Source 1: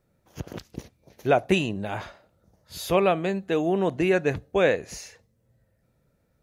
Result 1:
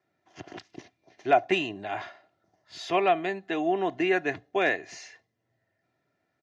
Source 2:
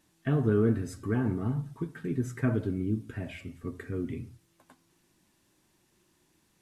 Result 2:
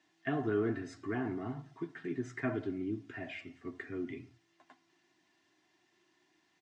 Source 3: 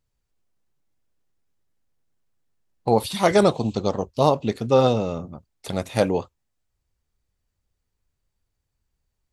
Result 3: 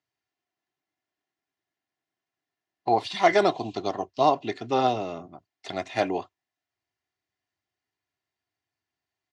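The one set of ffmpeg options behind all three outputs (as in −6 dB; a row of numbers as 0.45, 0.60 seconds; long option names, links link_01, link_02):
-filter_complex "[0:a]aecho=1:1:2.9:0.46,acrossover=split=770|1400[link_01][link_02][link_03];[link_03]aeval=exprs='0.0944*(abs(mod(val(0)/0.0944+3,4)-2)-1)':channel_layout=same[link_04];[link_01][link_02][link_04]amix=inputs=3:normalize=0,highpass=frequency=130:width=0.5412,highpass=frequency=130:width=1.3066,equalizer=frequency=140:width_type=q:width=4:gain=-5,equalizer=frequency=220:width_type=q:width=4:gain=-7,equalizer=frequency=490:width_type=q:width=4:gain=-7,equalizer=frequency=750:width_type=q:width=4:gain=6,equalizer=frequency=1900:width_type=q:width=4:gain=8,equalizer=frequency=2900:width_type=q:width=4:gain=3,lowpass=frequency=6200:width=0.5412,lowpass=frequency=6200:width=1.3066,volume=-4dB"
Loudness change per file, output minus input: −2.5, −7.0, −4.0 LU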